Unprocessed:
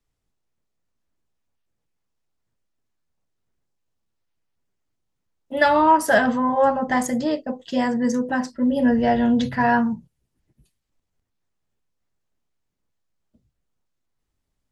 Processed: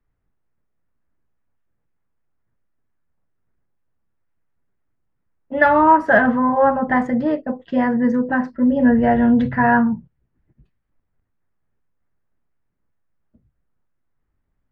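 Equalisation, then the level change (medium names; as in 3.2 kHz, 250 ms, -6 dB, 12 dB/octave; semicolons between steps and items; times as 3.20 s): resonant low-pass 1.7 kHz, resonance Q 1.6; bass shelf 340 Hz +6 dB; 0.0 dB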